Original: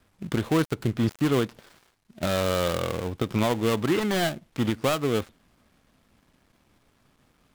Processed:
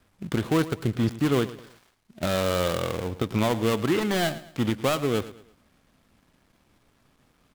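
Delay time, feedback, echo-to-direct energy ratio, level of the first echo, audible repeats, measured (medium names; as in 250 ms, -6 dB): 110 ms, 36%, -15.5 dB, -16.0 dB, 3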